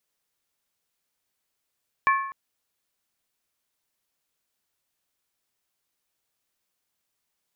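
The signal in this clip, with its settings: skin hit length 0.25 s, lowest mode 1090 Hz, modes 3, decay 0.74 s, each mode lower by 4.5 dB, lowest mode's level -16 dB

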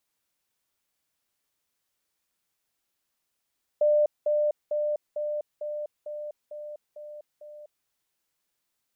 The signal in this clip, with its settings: level ladder 597 Hz -18 dBFS, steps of -3 dB, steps 9, 0.25 s 0.20 s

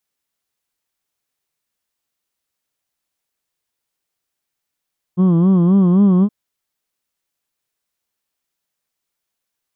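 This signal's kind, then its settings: formant vowel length 1.12 s, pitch 174 Hz, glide +2 st, vibrato 3.8 Hz, vibrato depth 1.25 st, F1 250 Hz, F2 1100 Hz, F3 3200 Hz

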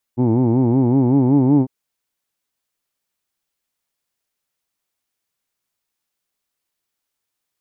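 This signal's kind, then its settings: formant-synthesis vowel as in who'd, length 1.50 s, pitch 117 Hz, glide +3 st, vibrato depth 1.3 st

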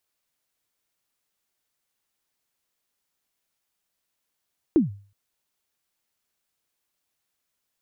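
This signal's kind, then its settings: kick drum length 0.37 s, from 360 Hz, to 100 Hz, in 0.141 s, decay 0.41 s, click off, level -11 dB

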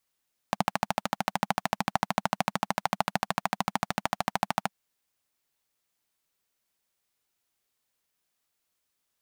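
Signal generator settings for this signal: single-cylinder engine model, steady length 4.20 s, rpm 1600, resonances 200/770 Hz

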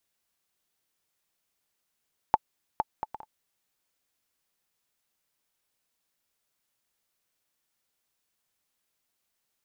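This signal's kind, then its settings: bouncing ball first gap 0.46 s, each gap 0.5, 867 Hz, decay 34 ms -7 dBFS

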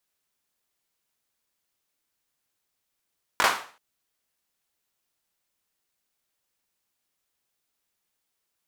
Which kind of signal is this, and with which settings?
hand clap length 0.38 s, bursts 3, apart 20 ms, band 1100 Hz, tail 0.42 s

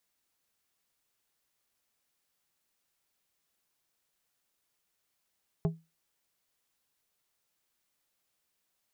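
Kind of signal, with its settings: glass hit plate, lowest mode 163 Hz, decay 0.25 s, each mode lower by 6 dB, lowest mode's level -22 dB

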